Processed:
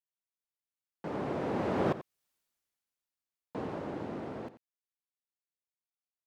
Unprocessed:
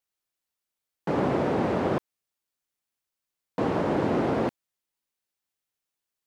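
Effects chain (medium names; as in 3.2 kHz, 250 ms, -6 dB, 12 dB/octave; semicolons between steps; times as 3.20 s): Doppler pass-by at 2.30 s, 10 m/s, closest 2 m; delay 88 ms -14 dB; trim +4.5 dB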